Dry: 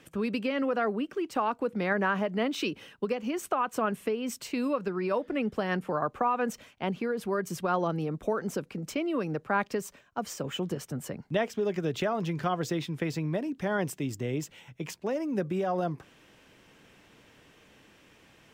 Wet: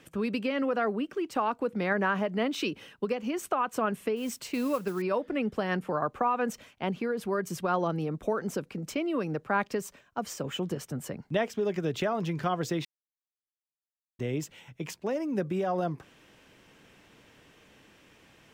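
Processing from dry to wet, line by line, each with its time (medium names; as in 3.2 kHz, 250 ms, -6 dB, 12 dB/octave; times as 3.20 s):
4.16–5.02 s: modulation noise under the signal 22 dB
12.85–14.19 s: mute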